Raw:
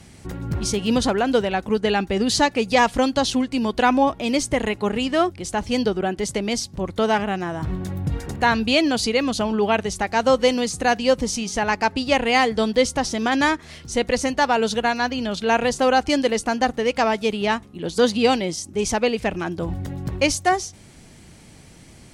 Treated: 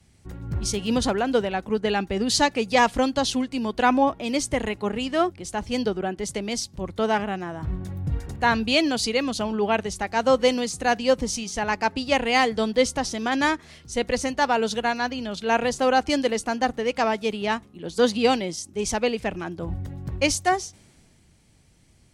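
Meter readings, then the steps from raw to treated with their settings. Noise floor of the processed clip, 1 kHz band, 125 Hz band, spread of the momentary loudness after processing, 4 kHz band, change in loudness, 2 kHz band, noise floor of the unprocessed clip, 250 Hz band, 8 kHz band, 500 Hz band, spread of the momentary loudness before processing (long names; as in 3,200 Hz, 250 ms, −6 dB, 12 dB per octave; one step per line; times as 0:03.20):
−57 dBFS, −2.5 dB, −3.5 dB, 10 LU, −2.5 dB, −3.0 dB, −2.5 dB, −46 dBFS, −3.5 dB, −2.0 dB, −3.0 dB, 9 LU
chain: multiband upward and downward expander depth 40%
level −3 dB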